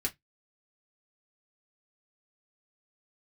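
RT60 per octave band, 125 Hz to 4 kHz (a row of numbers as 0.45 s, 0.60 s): 0.20 s, 0.15 s, 0.15 s, 0.10 s, 0.15 s, 0.15 s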